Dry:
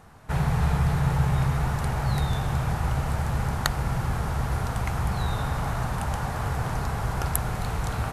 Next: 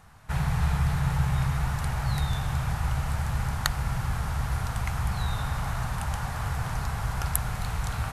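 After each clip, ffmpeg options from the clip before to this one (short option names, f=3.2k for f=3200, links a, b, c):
-af "equalizer=f=370:t=o:w=1.9:g=-10.5"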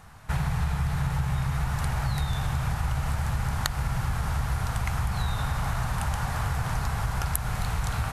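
-af "acompressor=threshold=-27dB:ratio=6,volume=4dB"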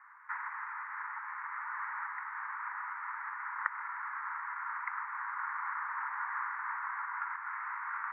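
-af "asuperpass=centerf=1400:order=12:qfactor=1.2"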